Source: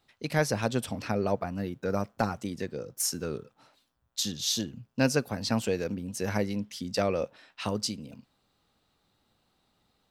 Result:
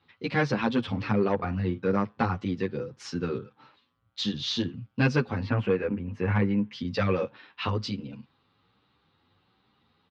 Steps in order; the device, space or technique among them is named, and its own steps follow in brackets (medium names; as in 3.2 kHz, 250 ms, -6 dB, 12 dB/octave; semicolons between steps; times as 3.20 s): 5.43–6.73 s: high-order bell 5.4 kHz -15 dB; barber-pole flanger into a guitar amplifier (endless flanger 9.2 ms +1.3 Hz; saturation -21 dBFS, distortion -18 dB; cabinet simulation 76–3800 Hz, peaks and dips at 99 Hz +4 dB, 640 Hz -10 dB, 1.1 kHz +3 dB); 1.35–1.91 s: doubling 43 ms -12 dB; trim +8 dB